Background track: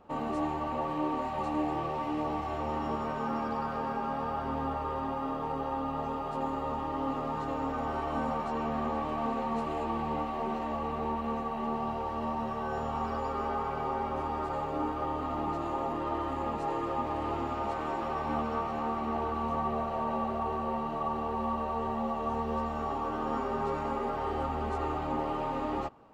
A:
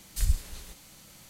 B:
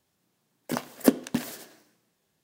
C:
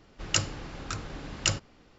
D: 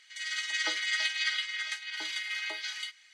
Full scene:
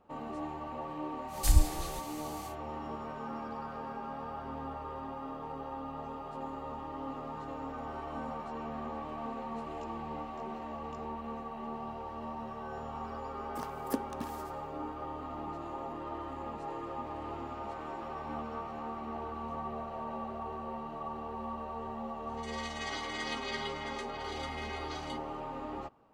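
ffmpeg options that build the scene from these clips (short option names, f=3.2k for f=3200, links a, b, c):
-filter_complex "[0:a]volume=-7.5dB[a];[1:a]acontrast=60[b];[3:a]acompressor=threshold=-42dB:ratio=6:attack=3.2:release=140:knee=1:detection=peak[c];[b]atrim=end=1.29,asetpts=PTS-STARTPTS,volume=-3.5dB,afade=t=in:d=0.1,afade=t=out:st=1.19:d=0.1,adelay=1270[d];[c]atrim=end=1.98,asetpts=PTS-STARTPTS,volume=-17.5dB,afade=t=in:d=0.004:c=hsin,afade=t=out:st=1.976:d=0.004:c=hsin,adelay=9470[e];[2:a]atrim=end=2.43,asetpts=PTS-STARTPTS,volume=-14dB,afade=t=in:d=0.004:c=hsin,afade=t=out:st=2.426:d=0.004:c=hsin,adelay=12860[f];[4:a]atrim=end=3.13,asetpts=PTS-STARTPTS,volume=-10dB,afade=t=in:d=0.004:c=hsin,afade=t=out:st=3.126:d=0.004:c=hsin,adelay=22270[g];[a][d][e][f][g]amix=inputs=5:normalize=0"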